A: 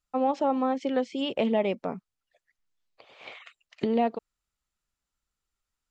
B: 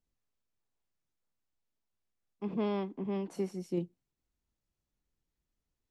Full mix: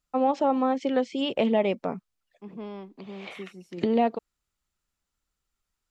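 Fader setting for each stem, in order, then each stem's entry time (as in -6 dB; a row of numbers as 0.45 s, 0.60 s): +2.0 dB, -6.0 dB; 0.00 s, 0.00 s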